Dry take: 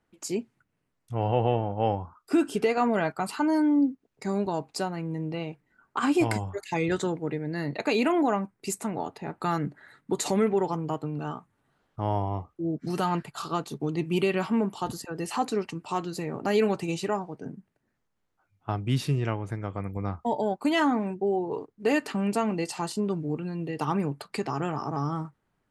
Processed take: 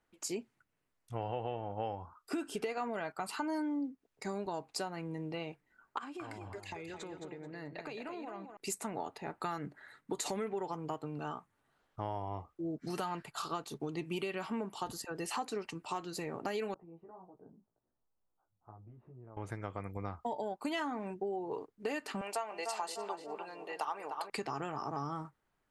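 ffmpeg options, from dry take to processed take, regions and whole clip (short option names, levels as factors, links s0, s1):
-filter_complex "[0:a]asettb=1/sr,asplit=3[s0][s1][s2];[s0]atrim=end=5.984[s3];[s1]atrim=start=5.98:end=8.57,asetpts=PTS-STARTPTS,afade=t=in:d=0.004:c=qsin,afade=t=out:st=2.586:d=0.004:c=qsin,aemphasis=mode=reproduction:type=cd,acompressor=threshold=0.0178:ratio=12:attack=3.2:release=140:knee=1:detection=peak,aecho=1:1:217|434|651:0.447|0.103|0.0236,atrim=end_sample=114219[s4];[s2]atrim=start=8.566[s5];[s3][s4]acrossfade=d=0.004:c1=hsin:c2=qsin[s6];[s6][s5]acrossfade=d=0.004:c1=qsin:c2=hsin,asettb=1/sr,asplit=3[s7][s8][s9];[s7]atrim=end=16.744[s10];[s8]atrim=start=16.74:end=19.37,asetpts=PTS-STARTPTS,afade=t=in:d=0.004:c=qsin,afade=t=out:st=2.626:d=0.004:c=qsin,acompressor=threshold=0.00562:ratio=3:attack=3.2:release=140:knee=1:detection=peak,flanger=delay=16:depth=2.5:speed=1.7,lowpass=f=1100:w=0.5412,lowpass=f=1100:w=1.3066[s11];[s9]atrim=start=19.366[s12];[s10][s11]acrossfade=d=0.004:c1=hsin:c2=qsin[s13];[s13][s12]acrossfade=d=0.004:c1=qsin:c2=hsin,asettb=1/sr,asplit=3[s14][s15][s16];[s14]atrim=end=22.214[s17];[s15]atrim=start=22.21:end=24.3,asetpts=PTS-STARTPTS,afade=t=in:d=0.004:c=qsin,afade=t=out:st=2.086:d=0.004:c=qsin,highpass=f=700:t=q:w=1.6,asplit=2[s18][s19];[s19]adelay=300,lowpass=f=1700:p=1,volume=0.398,asplit=2[s20][s21];[s21]adelay=300,lowpass=f=1700:p=1,volume=0.51,asplit=2[s22][s23];[s23]adelay=300,lowpass=f=1700:p=1,volume=0.51,asplit=2[s24][s25];[s25]adelay=300,lowpass=f=1700:p=1,volume=0.51,asplit=2[s26][s27];[s27]adelay=300,lowpass=f=1700:p=1,volume=0.51,asplit=2[s28][s29];[s29]adelay=300,lowpass=f=1700:p=1,volume=0.51[s30];[s18][s20][s22][s24][s26][s28][s30]amix=inputs=7:normalize=0,atrim=end_sample=92169[s31];[s16]atrim=start=24.296[s32];[s17][s31]acrossfade=d=0.004:c1=hsin:c2=qsin[s33];[s33][s32]acrossfade=d=0.004:c1=qsin:c2=hsin,equalizer=f=150:w=0.52:g=-7.5,acompressor=threshold=0.0282:ratio=6,volume=0.75"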